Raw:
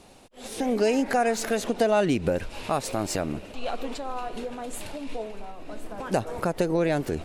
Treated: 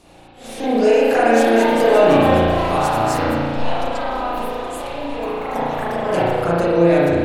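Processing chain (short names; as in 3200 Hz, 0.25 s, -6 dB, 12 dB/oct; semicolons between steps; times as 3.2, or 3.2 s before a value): echoes that change speed 0.682 s, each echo +4 st, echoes 2, each echo -6 dB; notches 50/100/150/200/250/300/350/400 Hz; spring tank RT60 1.8 s, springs 35 ms, chirp 25 ms, DRR -9 dB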